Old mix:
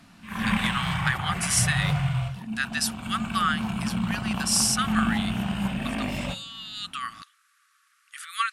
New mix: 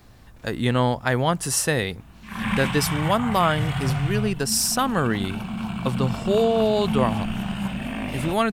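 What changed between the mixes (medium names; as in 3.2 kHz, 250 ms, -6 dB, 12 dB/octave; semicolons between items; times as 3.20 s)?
speech: remove brick-wall FIR band-pass 1.1–12 kHz; background: entry +2.00 s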